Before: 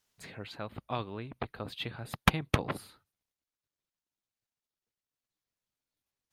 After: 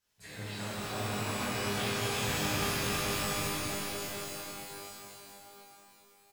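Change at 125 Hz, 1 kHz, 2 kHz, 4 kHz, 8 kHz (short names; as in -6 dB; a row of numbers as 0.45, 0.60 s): 0.0, +2.0, +3.5, +6.5, +15.0 dB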